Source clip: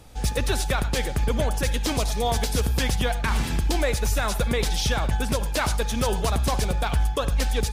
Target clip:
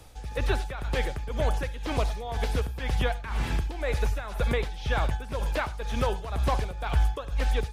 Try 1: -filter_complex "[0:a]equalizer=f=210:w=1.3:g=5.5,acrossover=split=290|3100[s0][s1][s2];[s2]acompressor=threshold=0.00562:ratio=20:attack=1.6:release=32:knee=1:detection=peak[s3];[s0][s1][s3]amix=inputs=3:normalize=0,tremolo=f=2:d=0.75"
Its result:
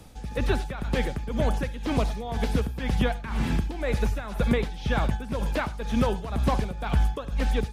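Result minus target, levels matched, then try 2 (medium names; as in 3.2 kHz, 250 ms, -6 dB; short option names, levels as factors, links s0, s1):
250 Hz band +7.0 dB
-filter_complex "[0:a]equalizer=f=210:w=1.3:g=-6,acrossover=split=290|3100[s0][s1][s2];[s2]acompressor=threshold=0.00562:ratio=20:attack=1.6:release=32:knee=1:detection=peak[s3];[s0][s1][s3]amix=inputs=3:normalize=0,tremolo=f=2:d=0.75"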